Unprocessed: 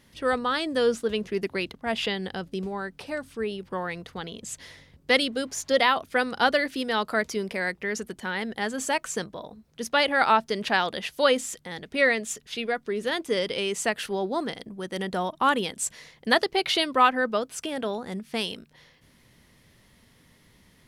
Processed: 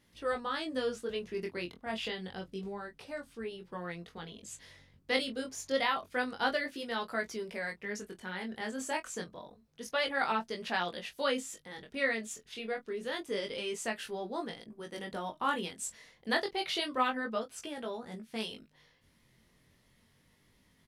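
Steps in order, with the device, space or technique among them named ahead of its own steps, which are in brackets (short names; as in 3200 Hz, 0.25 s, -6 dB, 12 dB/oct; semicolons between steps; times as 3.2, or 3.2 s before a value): double-tracked vocal (doubler 23 ms -12.5 dB; chorus 0.28 Hz, delay 17 ms, depth 5.9 ms); gain -6.5 dB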